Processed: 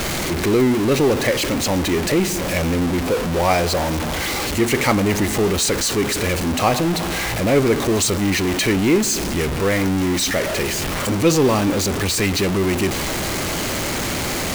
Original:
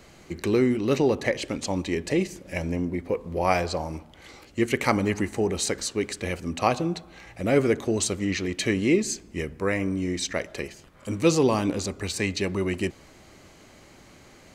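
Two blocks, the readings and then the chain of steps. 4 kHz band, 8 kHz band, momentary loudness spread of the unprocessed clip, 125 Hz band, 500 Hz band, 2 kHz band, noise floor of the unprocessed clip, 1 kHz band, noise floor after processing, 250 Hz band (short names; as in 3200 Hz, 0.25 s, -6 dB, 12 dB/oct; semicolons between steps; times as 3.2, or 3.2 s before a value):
+11.5 dB, +11.0 dB, 10 LU, +8.5 dB, +6.5 dB, +9.0 dB, -52 dBFS, +8.0 dB, -23 dBFS, +7.0 dB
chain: zero-crossing step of -19.5 dBFS; gain +2 dB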